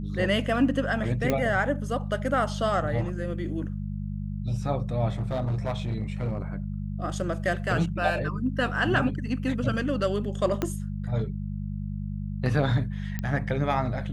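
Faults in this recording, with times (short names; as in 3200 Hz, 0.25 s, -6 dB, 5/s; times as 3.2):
hum 50 Hz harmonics 4 -32 dBFS
1.3 pop -11 dBFS
5.09–6.4 clipped -23.5 dBFS
10.62 pop -13 dBFS
13.19 pop -17 dBFS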